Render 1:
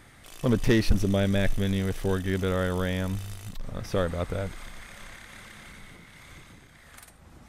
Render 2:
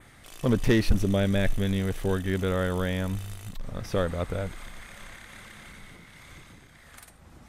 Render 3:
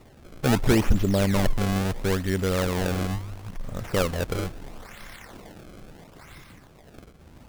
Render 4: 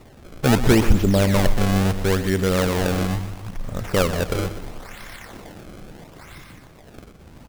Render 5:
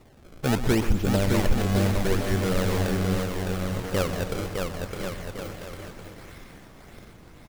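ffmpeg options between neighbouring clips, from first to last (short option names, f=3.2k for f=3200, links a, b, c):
-af "adynamicequalizer=threshold=0.00126:dfrequency=5200:dqfactor=2.7:tfrequency=5200:tqfactor=2.7:attack=5:release=100:ratio=0.375:range=2:mode=cutabove:tftype=bell"
-af "acrusher=samples=27:mix=1:aa=0.000001:lfo=1:lforange=43.2:lforate=0.74,volume=2dB"
-af "aecho=1:1:124|248|372|496:0.251|0.105|0.0443|0.0186,volume=4.5dB"
-af "aecho=1:1:610|1068|1411|1668|1861:0.631|0.398|0.251|0.158|0.1,volume=-7dB"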